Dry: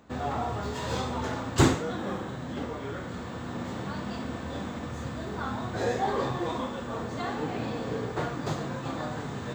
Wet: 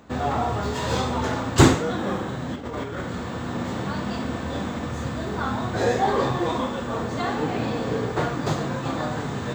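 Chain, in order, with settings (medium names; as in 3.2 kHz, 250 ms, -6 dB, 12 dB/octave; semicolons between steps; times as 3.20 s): 2.54–3.01 s: compressor with a negative ratio -37 dBFS, ratio -0.5; trim +6.5 dB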